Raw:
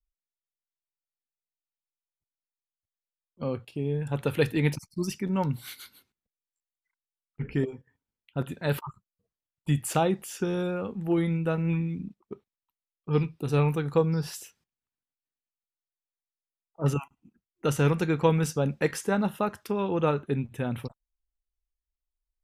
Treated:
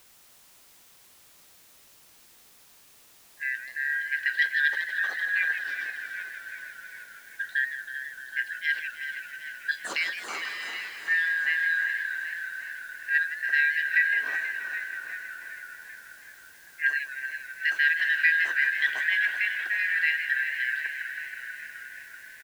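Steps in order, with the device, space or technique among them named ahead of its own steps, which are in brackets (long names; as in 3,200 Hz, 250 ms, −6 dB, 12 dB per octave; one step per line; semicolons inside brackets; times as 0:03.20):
0:09.71–0:11.08: meter weighting curve ITU-R 468
echo with shifted repeats 385 ms, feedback 63%, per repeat −38 Hz, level −10 dB
split-band scrambled radio (band-splitting scrambler in four parts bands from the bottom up 4123; band-pass filter 360–2,900 Hz; white noise bed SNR 25 dB)
feedback echo with a swinging delay time 161 ms, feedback 79%, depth 134 cents, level −11.5 dB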